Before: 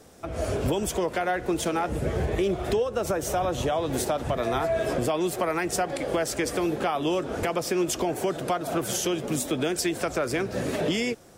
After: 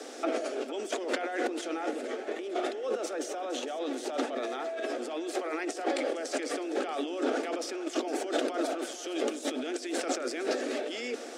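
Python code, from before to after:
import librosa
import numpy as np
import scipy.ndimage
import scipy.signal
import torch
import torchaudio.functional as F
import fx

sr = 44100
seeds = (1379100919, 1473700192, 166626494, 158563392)

y = fx.high_shelf(x, sr, hz=4300.0, db=8.5)
y = fx.over_compress(y, sr, threshold_db=-35.0, ratio=-1.0)
y = scipy.signal.sosfilt(scipy.signal.butter(12, 250.0, 'highpass', fs=sr, output='sos'), y)
y = fx.air_absorb(y, sr, metres=100.0)
y = fx.notch(y, sr, hz=1000.0, q=5.5)
y = fx.echo_split(y, sr, split_hz=630.0, low_ms=105, high_ms=461, feedback_pct=52, wet_db=-14.0)
y = y * librosa.db_to_amplitude(3.0)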